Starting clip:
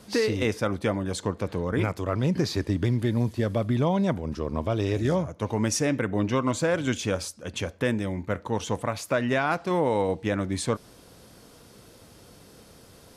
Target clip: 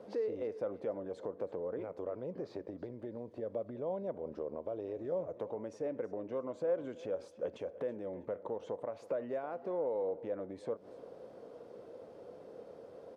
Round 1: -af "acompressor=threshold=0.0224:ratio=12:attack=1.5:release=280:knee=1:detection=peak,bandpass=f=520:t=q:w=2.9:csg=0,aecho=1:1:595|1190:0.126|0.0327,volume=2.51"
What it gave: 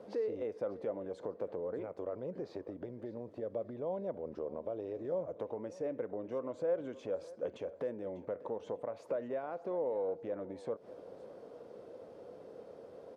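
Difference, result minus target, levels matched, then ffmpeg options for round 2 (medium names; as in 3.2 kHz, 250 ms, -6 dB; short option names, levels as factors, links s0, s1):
echo 270 ms late
-af "acompressor=threshold=0.0224:ratio=12:attack=1.5:release=280:knee=1:detection=peak,bandpass=f=520:t=q:w=2.9:csg=0,aecho=1:1:325|650:0.126|0.0327,volume=2.51"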